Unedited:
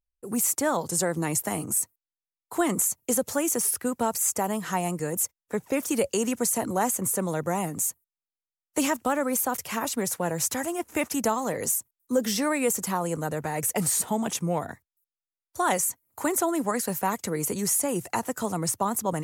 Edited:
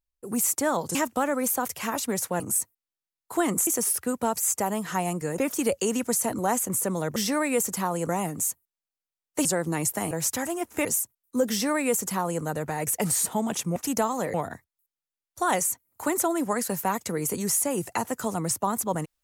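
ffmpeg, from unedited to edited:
-filter_complex "[0:a]asplit=12[a][b][c][d][e][f][g][h][i][j][k][l];[a]atrim=end=0.952[m];[b]atrim=start=8.838:end=10.292[n];[c]atrim=start=1.608:end=2.882[o];[d]atrim=start=3.448:end=5.162[p];[e]atrim=start=5.698:end=7.482[q];[f]atrim=start=12.258:end=13.192[r];[g]atrim=start=7.478:end=8.842[s];[h]atrim=start=0.948:end=1.612[t];[i]atrim=start=10.288:end=11.032[u];[j]atrim=start=11.608:end=14.522[v];[k]atrim=start=11.028:end=11.612[w];[l]atrim=start=14.518[x];[m][n]acrossfade=d=0.004:c1=hsin:c2=hsin[y];[y][o]acrossfade=d=0.004:c1=hsin:c2=hsin[z];[z][p]acrossfade=d=0.004:c1=hsin:c2=hsin[aa];[aa][q]acrossfade=d=0.004:c1=hsin:c2=hsin[ab];[ab][r]acrossfade=d=0.004:c1=hsin:c2=hsin[ac];[ac][s]acrossfade=d=0.004:c1=hsin:c2=hsin[ad];[ad][t]acrossfade=d=0.004:c1=hsin:c2=hsin[ae];[ae][u]acrossfade=d=0.004:c1=hsin:c2=hsin[af];[af][v]acrossfade=d=0.004:c1=hsin:c2=hsin[ag];[ag][w]acrossfade=d=0.004:c1=hsin:c2=hsin[ah];[ah][x]acrossfade=d=0.004:c1=hsin:c2=hsin"

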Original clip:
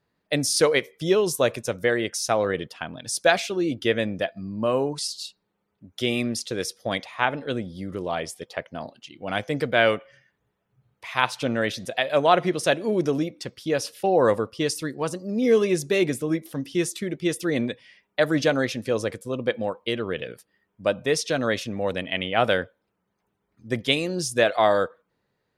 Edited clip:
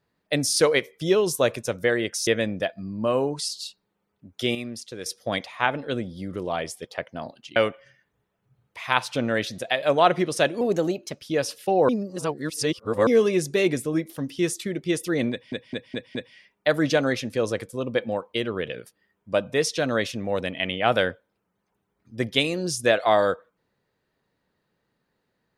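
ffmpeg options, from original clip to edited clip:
-filter_complex "[0:a]asplit=13[a][b][c][d][e][f][g][h][i][j][k][l][m];[a]atrim=end=2.272[n];[b]atrim=start=3.858:end=6.142[o];[c]atrim=start=6.138:end=6.652,asetpts=PTS-STARTPTS,volume=-8dB[p];[d]atrim=start=6.648:end=9.152[q];[e]atrim=start=9.828:end=12.884[r];[f]atrim=start=12.88:end=13.58,asetpts=PTS-STARTPTS,asetrate=50715,aresample=44100,atrim=end_sample=26843,asetpts=PTS-STARTPTS[s];[g]atrim=start=13.576:end=14.252[t];[h]atrim=start=14.248:end=15.432,asetpts=PTS-STARTPTS,areverse[u];[i]atrim=start=15.428:end=17.882[v];[j]atrim=start=17.668:end=17.882[w];[k]atrim=start=17.668:end=17.882[x];[l]atrim=start=17.668:end=17.882[y];[m]atrim=start=17.668[z];[n][o]acrossfade=d=0.004:c1=hsin:c2=hsin[aa];[aa][p]acrossfade=d=0.004:c1=hsin:c2=hsin[ab];[ab][q]acrossfade=d=0.004:c1=hsin:c2=hsin[ac];[ac][r]acrossfade=d=0.004:c1=hsin:c2=hsin[ad];[ad][s]acrossfade=d=0.004:c1=hsin:c2=hsin[ae];[ae][t]acrossfade=d=0.004:c1=hsin:c2=hsin[af];[af][u]acrossfade=d=0.004:c1=hsin:c2=hsin[ag];[ag][v]acrossfade=d=0.004:c1=hsin:c2=hsin[ah];[ah][w]acrossfade=d=0.004:c1=hsin:c2=hsin[ai];[ai][x]acrossfade=d=0.004:c1=hsin:c2=hsin[aj];[aj][y]acrossfade=d=0.004:c1=hsin:c2=hsin[ak];[ak][z]acrossfade=d=0.004:c1=hsin:c2=hsin"

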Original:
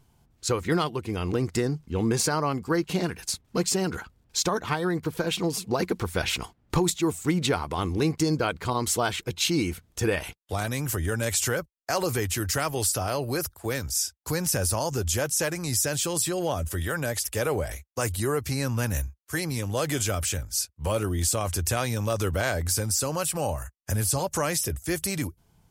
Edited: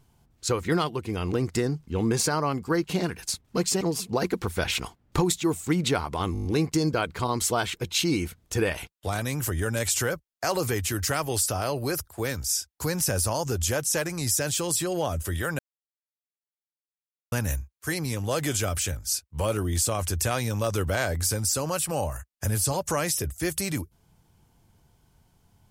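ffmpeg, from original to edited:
-filter_complex "[0:a]asplit=10[a][b][c][d][e][f][g][h][i][j];[a]atrim=end=3.812[k];[b]atrim=start=5.388:end=7.932[l];[c]atrim=start=7.908:end=7.932[m];[d]atrim=start=7.908:end=7.932[n];[e]atrim=start=7.908:end=7.932[o];[f]atrim=start=7.908:end=7.932[p];[g]atrim=start=7.908:end=7.932[q];[h]atrim=start=7.908:end=17.05,asetpts=PTS-STARTPTS,afade=t=out:st=9.138:d=0.004:c=hsin[r];[i]atrim=start=17.05:end=18.78,asetpts=PTS-STARTPTS,volume=0[s];[j]atrim=start=18.78,asetpts=PTS-STARTPTS,afade=t=in:d=0.004:c=hsin[t];[k][l]acrossfade=d=0.004:c1=hsin:c2=hsin[u];[u][m]acrossfade=d=0.004:c1=hsin:c2=hsin[v];[v][n]acrossfade=d=0.004:c1=hsin:c2=hsin[w];[w][o]acrossfade=d=0.004:c1=hsin:c2=hsin[x];[x][p]acrossfade=d=0.004:c1=hsin:c2=hsin[y];[y][q]acrossfade=d=0.004:c1=hsin:c2=hsin[z];[r][s][t]concat=n=3:v=0:a=1[aa];[z][aa]acrossfade=d=0.004:c1=hsin:c2=hsin"

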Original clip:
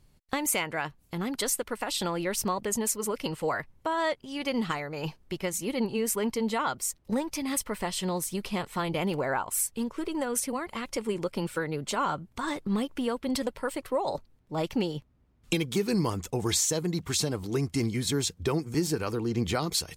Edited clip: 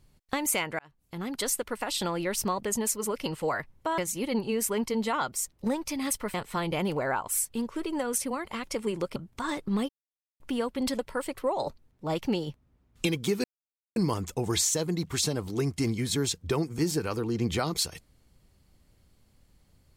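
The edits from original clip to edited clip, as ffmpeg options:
-filter_complex "[0:a]asplit=7[a][b][c][d][e][f][g];[a]atrim=end=0.79,asetpts=PTS-STARTPTS,afade=t=out:st=0.786:d=0.004:c=hsin[h];[b]atrim=start=0.79:end=3.982,asetpts=PTS-STARTPTS,afade=t=in:d=0.89:c=qsin[i];[c]atrim=start=5.438:end=7.802[j];[d]atrim=start=8.558:end=11.382[k];[e]atrim=start=12.148:end=12.88,asetpts=PTS-STARTPTS,afade=t=out:st=0.728:d=0.004:c=hsin,apad=pad_dur=0.51[l];[f]atrim=start=12.88:end=15.92,asetpts=PTS-STARTPTS,afade=t=in:d=0.004:c=hsin,afade=t=out:st=3.036:d=0.004:c=hsin,apad=pad_dur=0.52[m];[g]atrim=start=15.92,asetpts=PTS-STARTPTS,afade=t=in:d=0.004:c=hsin[n];[h][i]concat=n=2:v=0:a=1[o];[o][j]acrossfade=d=0.004:c1=hsin:c2=hsin[p];[p][k]acrossfade=d=0.004:c1=hsin:c2=hsin[q];[l][m][n]concat=n=3:v=0:a=1[r];[q][r]acrossfade=d=0.004:c1=hsin:c2=hsin"

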